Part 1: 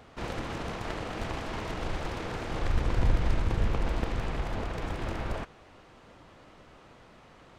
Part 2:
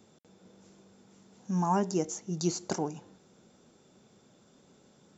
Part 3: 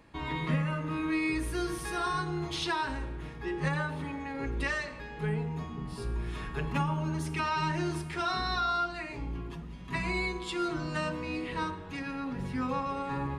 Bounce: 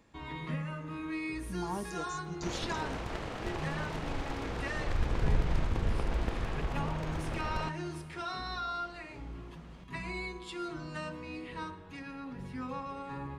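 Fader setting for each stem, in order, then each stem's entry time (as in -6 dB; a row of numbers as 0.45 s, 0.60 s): -3.5 dB, -10.5 dB, -7.0 dB; 2.25 s, 0.00 s, 0.00 s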